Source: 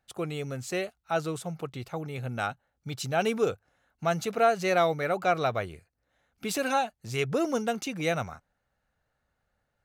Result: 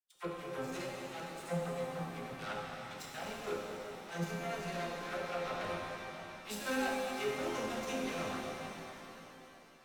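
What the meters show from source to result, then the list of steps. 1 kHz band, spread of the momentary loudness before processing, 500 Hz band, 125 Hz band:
-10.5 dB, 12 LU, -10.5 dB, -10.0 dB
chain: in parallel at -2.5 dB: level held to a coarse grid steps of 11 dB; on the sum: peak limiter -16 dBFS, peak gain reduction 9 dB; reverse; compression 6:1, threshold -34 dBFS, peak gain reduction 13 dB; reverse; chord resonator F3 minor, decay 0.35 s; vibrato 0.44 Hz 8.5 cents; Chebyshev shaper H 3 -25 dB, 7 -19 dB, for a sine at -39.5 dBFS; phase dispersion lows, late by 52 ms, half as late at 770 Hz; pitch-shifted reverb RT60 3.4 s, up +7 st, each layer -8 dB, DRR -2.5 dB; trim +14.5 dB

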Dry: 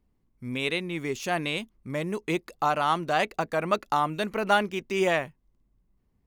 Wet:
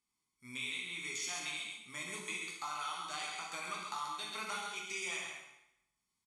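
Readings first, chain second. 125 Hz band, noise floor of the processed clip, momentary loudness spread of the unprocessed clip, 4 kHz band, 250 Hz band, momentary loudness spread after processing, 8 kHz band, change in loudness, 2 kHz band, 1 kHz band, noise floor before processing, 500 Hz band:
-23.5 dB, under -85 dBFS, 9 LU, -6.0 dB, -22.5 dB, 5 LU, +2.0 dB, -12.0 dB, -9.5 dB, -15.5 dB, -71 dBFS, -24.0 dB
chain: low-pass 9.2 kHz 24 dB/octave; comb 0.9 ms, depth 63%; harmonic-percussive split percussive -3 dB; differentiator; compression, threshold -46 dBFS, peak gain reduction 14.5 dB; feedback comb 430 Hz, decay 0.55 s, mix 70%; loudspeakers at several distances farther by 26 m -12 dB, 46 m -5 dB; plate-style reverb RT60 0.83 s, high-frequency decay 0.95×, DRR -2 dB; trim +14.5 dB

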